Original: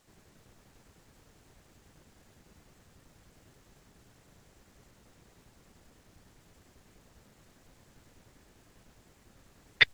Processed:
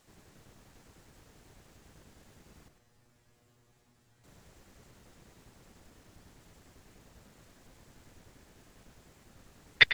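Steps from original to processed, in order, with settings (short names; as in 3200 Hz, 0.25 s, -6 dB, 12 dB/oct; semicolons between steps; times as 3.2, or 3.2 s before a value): 2.68–4.24 resonator 120 Hz, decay 0.29 s, harmonics all, mix 90%; outdoor echo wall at 17 m, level -8 dB; gain +1.5 dB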